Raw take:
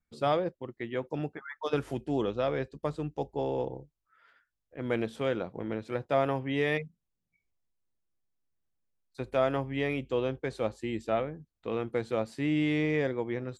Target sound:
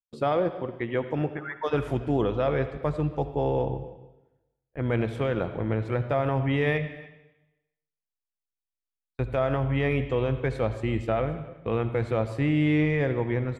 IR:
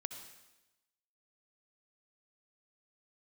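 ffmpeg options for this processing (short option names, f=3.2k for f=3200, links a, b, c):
-filter_complex "[0:a]agate=range=-33dB:threshold=-51dB:ratio=16:detection=peak,asubboost=boost=4:cutoff=120,alimiter=limit=-23dB:level=0:latency=1,aecho=1:1:280:0.0841,asplit=2[a][b];[1:a]atrim=start_sample=2205,lowpass=3.1k[c];[b][c]afir=irnorm=-1:irlink=0,volume=4.5dB[d];[a][d]amix=inputs=2:normalize=0"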